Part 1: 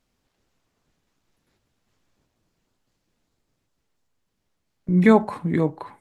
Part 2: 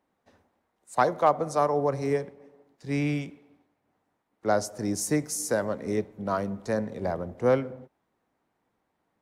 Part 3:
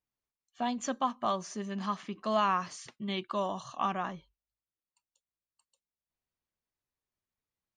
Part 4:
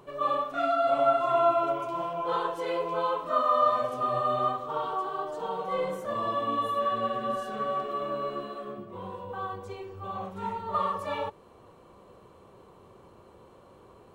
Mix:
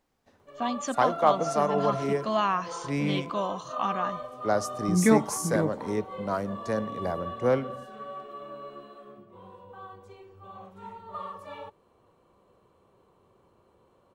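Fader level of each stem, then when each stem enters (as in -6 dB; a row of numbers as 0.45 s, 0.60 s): -6.0 dB, -1.5 dB, +2.0 dB, -9.5 dB; 0.00 s, 0.00 s, 0.00 s, 0.40 s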